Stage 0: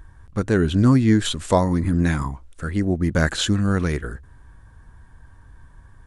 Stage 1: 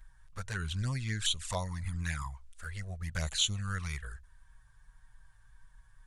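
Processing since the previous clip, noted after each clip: passive tone stack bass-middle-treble 10-0-10; envelope flanger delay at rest 8.5 ms, full sweep at -26 dBFS; gain -1.5 dB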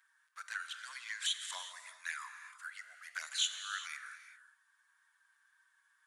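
ladder high-pass 1100 Hz, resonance 35%; non-linear reverb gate 0.42 s flat, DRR 7.5 dB; gain +3 dB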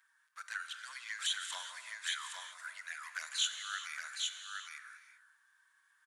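echo 0.816 s -4 dB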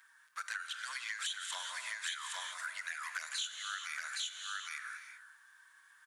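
compressor 5:1, threshold -46 dBFS, peak gain reduction 16 dB; gain +8.5 dB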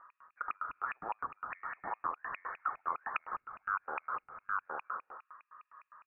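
LFO low-pass square 4.9 Hz 340–1600 Hz; inverted band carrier 2800 Hz; gain +1 dB

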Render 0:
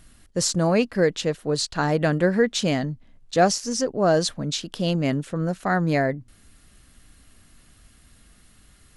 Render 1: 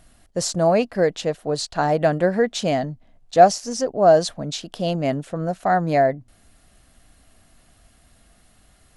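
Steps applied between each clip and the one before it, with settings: bell 690 Hz +11 dB 0.63 oct; gain -2 dB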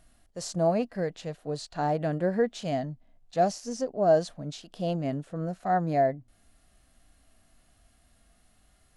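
harmonic-percussive split percussive -9 dB; gain -5.5 dB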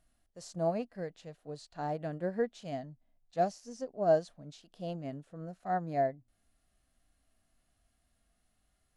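upward expander 1.5:1, over -33 dBFS; gain -4 dB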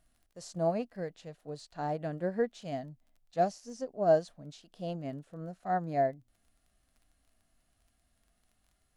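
crackle 19/s -56 dBFS; gain +1.5 dB

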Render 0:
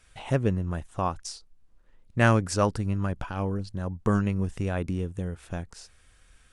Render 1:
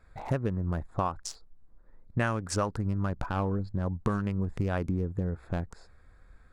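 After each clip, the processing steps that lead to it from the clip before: Wiener smoothing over 15 samples; dynamic EQ 1200 Hz, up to +5 dB, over -39 dBFS, Q 0.99; compressor 12:1, threshold -28 dBFS, peak gain reduction 15.5 dB; gain +3.5 dB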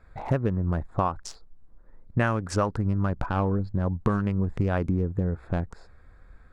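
high shelf 4600 Hz -10 dB; gain +4.5 dB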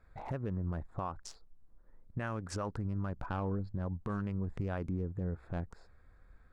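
limiter -18.5 dBFS, peak gain reduction 8 dB; gain -8.5 dB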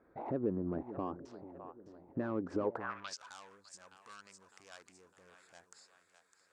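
split-band echo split 460 Hz, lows 0.442 s, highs 0.607 s, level -14 dB; overdrive pedal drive 16 dB, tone 5600 Hz, clips at -25 dBFS; band-pass sweep 310 Hz -> 7900 Hz, 2.62–3.21; gain +9 dB

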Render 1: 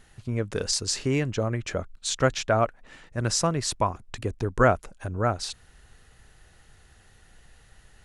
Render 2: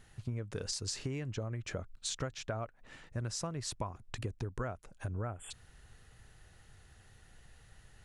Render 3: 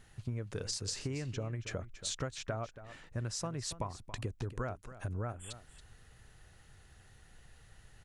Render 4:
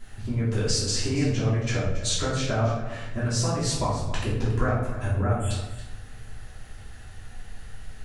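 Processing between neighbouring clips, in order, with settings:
spectral repair 5.24–5.48, 3500–7000 Hz before; bell 110 Hz +5.5 dB 0.94 oct; compressor 12:1, threshold -29 dBFS, peak gain reduction 17 dB; gain -5 dB
echo 0.278 s -14 dB
shoebox room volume 230 m³, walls mixed, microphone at 3 m; gain +3.5 dB

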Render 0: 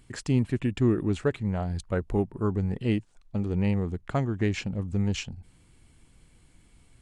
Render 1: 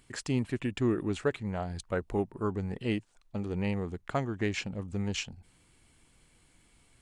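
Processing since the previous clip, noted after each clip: low shelf 280 Hz -9 dB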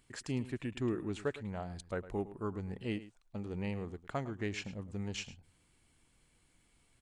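echo 0.107 s -15.5 dB; gain -6.5 dB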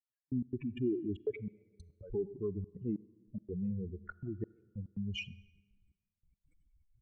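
spectral contrast raised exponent 3.4; step gate "...x.xxxxxx.xx" 142 bpm -60 dB; on a send at -21 dB: reverb RT60 1.6 s, pre-delay 33 ms; on the sum: gain +2 dB

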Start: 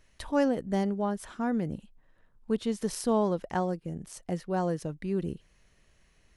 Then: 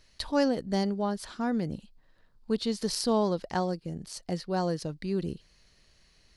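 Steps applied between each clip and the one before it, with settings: bell 4500 Hz +14.5 dB 0.55 oct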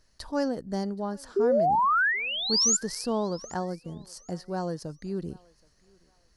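painted sound rise, 1.36–2.77, 380–7400 Hz -20 dBFS; band shelf 2900 Hz -8.5 dB 1.2 oct; thinning echo 0.774 s, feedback 28%, high-pass 520 Hz, level -23.5 dB; gain -2.5 dB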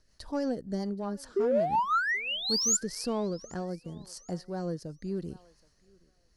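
in parallel at -9 dB: hard clip -28 dBFS, distortion -7 dB; on the sum: rotary speaker horn 5.5 Hz, later 0.75 Hz, at 2.38; gain -2.5 dB

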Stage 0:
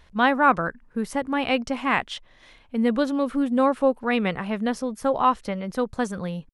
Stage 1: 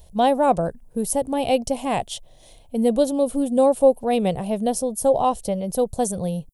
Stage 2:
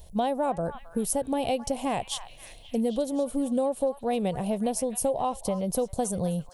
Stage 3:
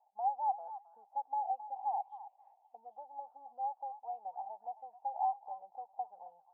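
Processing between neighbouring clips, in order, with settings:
EQ curve 140 Hz 0 dB, 250 Hz -8 dB, 700 Hz +1 dB, 1300 Hz -23 dB, 2000 Hz -20 dB, 3100 Hz -8 dB, 5100 Hz -4 dB, 9800 Hz +11 dB; gain +7.5 dB
compressor, threshold -24 dBFS, peak gain reduction 13.5 dB; delay with a stepping band-pass 0.266 s, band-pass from 1300 Hz, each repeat 0.7 oct, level -8 dB
in parallel at -9.5 dB: soft clip -24 dBFS, distortion -14 dB; on the sum: Butterworth band-pass 820 Hz, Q 6.7; gain -1.5 dB

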